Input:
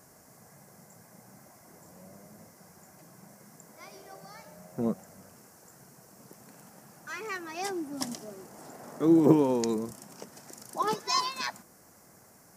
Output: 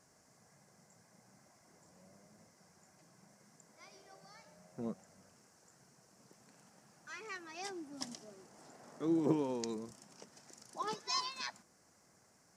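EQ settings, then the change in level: distance through air 120 m; pre-emphasis filter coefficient 0.8; +2.5 dB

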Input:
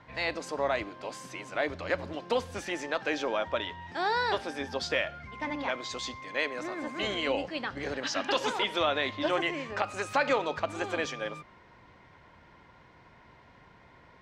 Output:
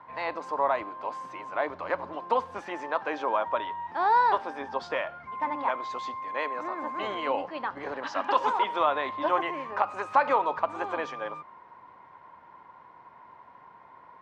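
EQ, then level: high-pass 330 Hz 6 dB/octave; low-pass 1.3 kHz 6 dB/octave; peaking EQ 1 kHz +13.5 dB 0.73 oct; 0.0 dB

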